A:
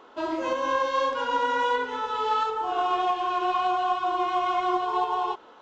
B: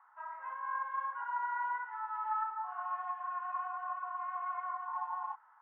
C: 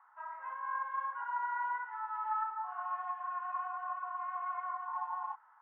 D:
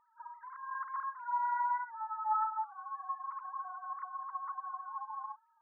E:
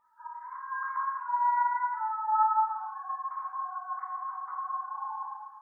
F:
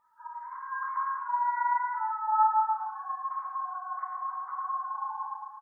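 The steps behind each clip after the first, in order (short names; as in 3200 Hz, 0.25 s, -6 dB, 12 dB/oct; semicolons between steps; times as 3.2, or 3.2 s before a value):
elliptic band-pass 850–1900 Hz, stop band 70 dB; gain -9 dB
nothing audible
sine-wave speech
non-linear reverb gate 0.39 s falling, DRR -4.5 dB
echo 0.109 s -7 dB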